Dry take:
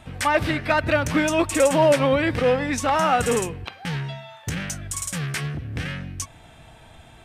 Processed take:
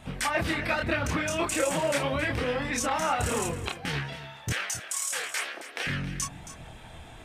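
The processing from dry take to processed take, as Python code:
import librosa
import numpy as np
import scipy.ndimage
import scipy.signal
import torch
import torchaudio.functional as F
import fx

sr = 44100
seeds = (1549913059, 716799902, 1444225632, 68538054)

p1 = fx.high_shelf(x, sr, hz=5100.0, db=-6.5, at=(0.88, 1.31))
p2 = fx.highpass(p1, sr, hz=480.0, slope=24, at=(4.5, 5.87))
p3 = fx.hpss(p2, sr, part='harmonic', gain_db=-10)
p4 = fx.over_compress(p3, sr, threshold_db=-35.0, ratio=-1.0)
p5 = p3 + F.gain(torch.from_numpy(p4), -1.5).numpy()
p6 = fx.chorus_voices(p5, sr, voices=2, hz=0.45, base_ms=28, depth_ms=3.2, mix_pct=45)
y = p6 + fx.echo_single(p6, sr, ms=271, db=-13.5, dry=0)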